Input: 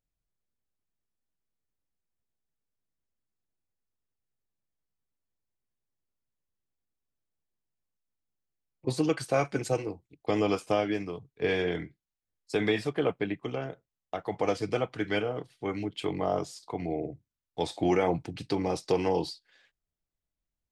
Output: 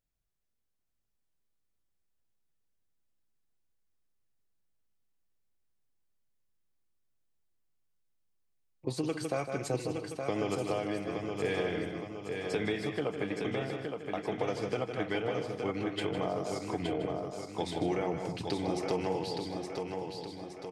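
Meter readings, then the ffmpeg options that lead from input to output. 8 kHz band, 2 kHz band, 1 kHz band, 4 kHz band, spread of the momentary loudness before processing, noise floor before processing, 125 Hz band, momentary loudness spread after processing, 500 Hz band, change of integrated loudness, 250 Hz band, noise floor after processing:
-1.5 dB, -3.0 dB, -3.5 dB, -2.0 dB, 11 LU, under -85 dBFS, -2.5 dB, 6 LU, -3.5 dB, -4.0 dB, -3.0 dB, -79 dBFS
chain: -filter_complex "[0:a]asplit=2[a][b];[b]aecho=0:1:155|245:0.355|0.15[c];[a][c]amix=inputs=2:normalize=0,acompressor=threshold=-31dB:ratio=3,asplit=2[d][e];[e]aecho=0:1:868|1736|2604|3472|4340|5208:0.562|0.287|0.146|0.0746|0.038|0.0194[f];[d][f]amix=inputs=2:normalize=0"

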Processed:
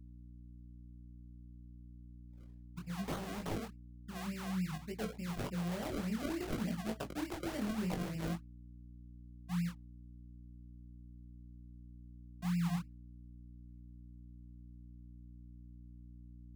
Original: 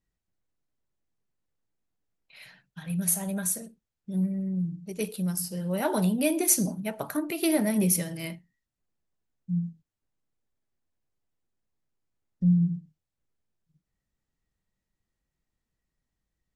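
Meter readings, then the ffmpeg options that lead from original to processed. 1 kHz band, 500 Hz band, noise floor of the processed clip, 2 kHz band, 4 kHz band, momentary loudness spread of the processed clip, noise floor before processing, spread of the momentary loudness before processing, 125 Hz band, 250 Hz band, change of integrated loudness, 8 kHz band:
-6.5 dB, -11.5 dB, -54 dBFS, -7.5 dB, -8.0 dB, 18 LU, under -85 dBFS, 11 LU, -9.0 dB, -10.5 dB, -12.0 dB, -24.0 dB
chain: -filter_complex "[0:a]anlmdn=2.51,adynamicequalizer=threshold=0.00562:dfrequency=660:dqfactor=7.5:tfrequency=660:tqfactor=7.5:attack=5:release=100:ratio=0.375:range=3:mode=cutabove:tftype=bell,acrusher=samples=34:mix=1:aa=0.000001:lfo=1:lforange=34:lforate=3.4,areverse,acompressor=threshold=-39dB:ratio=8,areverse,flanger=delay=18:depth=6:speed=0.59,aeval=exprs='val(0)+0.00126*(sin(2*PI*60*n/s)+sin(2*PI*2*60*n/s)/2+sin(2*PI*3*60*n/s)/3+sin(2*PI*4*60*n/s)/4+sin(2*PI*5*60*n/s)/5)':c=same,acrossover=split=490[a][b];[b]acompressor=threshold=-48dB:ratio=4[c];[a][c]amix=inputs=2:normalize=0,volume=6.5dB"

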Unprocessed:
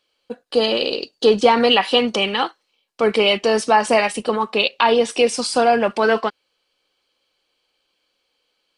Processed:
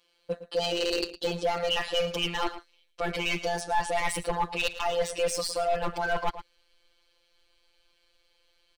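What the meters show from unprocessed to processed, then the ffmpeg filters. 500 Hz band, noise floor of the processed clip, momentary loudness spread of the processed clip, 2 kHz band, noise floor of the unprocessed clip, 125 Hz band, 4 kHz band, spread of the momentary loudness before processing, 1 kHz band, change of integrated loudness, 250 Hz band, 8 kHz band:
-12.5 dB, -69 dBFS, 7 LU, -10.0 dB, -72 dBFS, n/a, -11.0 dB, 8 LU, -11.0 dB, -11.5 dB, -15.0 dB, -6.0 dB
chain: -filter_complex "[0:a]afftfilt=real='hypot(re,im)*cos(PI*b)':imag='0':win_size=1024:overlap=0.75,areverse,acompressor=threshold=-27dB:ratio=10,areverse,asoftclip=type=hard:threshold=-24dB,asubboost=boost=12:cutoff=54,asplit=2[a][b];[b]adelay=110.8,volume=-13dB,highshelf=f=4k:g=-2.49[c];[a][c]amix=inputs=2:normalize=0,volume=4.5dB"

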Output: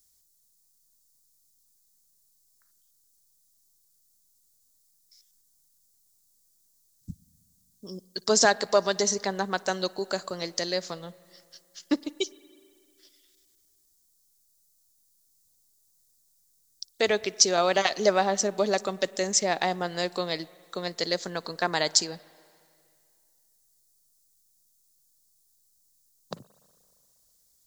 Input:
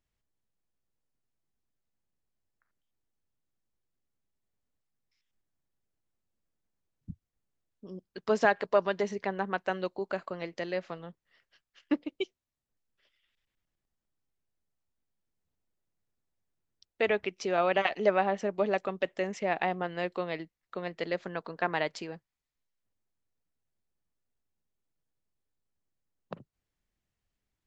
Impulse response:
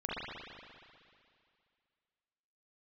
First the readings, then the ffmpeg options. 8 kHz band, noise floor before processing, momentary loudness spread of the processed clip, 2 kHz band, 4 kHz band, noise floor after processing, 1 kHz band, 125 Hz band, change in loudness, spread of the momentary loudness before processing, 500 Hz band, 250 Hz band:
n/a, under -85 dBFS, 23 LU, +2.5 dB, +15.0 dB, -67 dBFS, +3.0 dB, +3.0 dB, +5.0 dB, 21 LU, +3.0 dB, +3.0 dB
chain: -filter_complex "[0:a]aexciter=amount=13.8:drive=5:freq=4.1k,asplit=2[a][b];[1:a]atrim=start_sample=2205,adelay=57[c];[b][c]afir=irnorm=-1:irlink=0,volume=-26.5dB[d];[a][d]amix=inputs=2:normalize=0,volume=3dB"

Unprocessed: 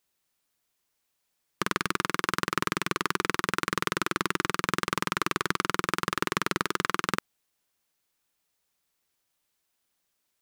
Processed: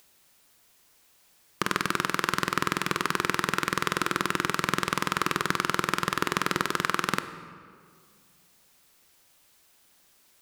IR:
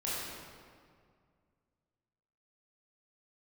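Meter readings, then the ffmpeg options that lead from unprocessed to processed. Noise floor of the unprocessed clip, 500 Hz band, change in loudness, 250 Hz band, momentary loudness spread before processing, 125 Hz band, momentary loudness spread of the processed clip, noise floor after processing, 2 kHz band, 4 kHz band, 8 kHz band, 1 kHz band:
-78 dBFS, +1.0 dB, +1.5 dB, +1.0 dB, 1 LU, +1.5 dB, 2 LU, -62 dBFS, +1.5 dB, +1.5 dB, +1.5 dB, +1.5 dB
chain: -filter_complex "[0:a]acompressor=mode=upward:threshold=-49dB:ratio=2.5,asplit=2[a][b];[1:a]atrim=start_sample=2205[c];[b][c]afir=irnorm=-1:irlink=0,volume=-14dB[d];[a][d]amix=inputs=2:normalize=0"

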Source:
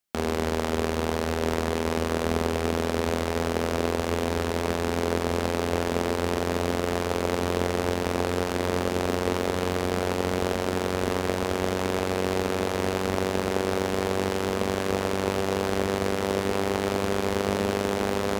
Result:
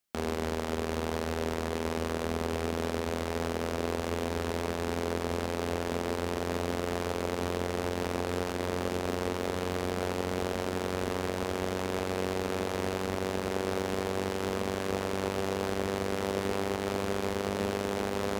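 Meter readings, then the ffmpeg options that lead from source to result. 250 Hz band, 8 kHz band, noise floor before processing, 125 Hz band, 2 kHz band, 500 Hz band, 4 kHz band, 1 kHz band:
-5.5 dB, -5.5 dB, -29 dBFS, -5.5 dB, -5.5 dB, -5.5 dB, -5.5 dB, -5.5 dB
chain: -af "alimiter=limit=-17dB:level=0:latency=1:release=257"

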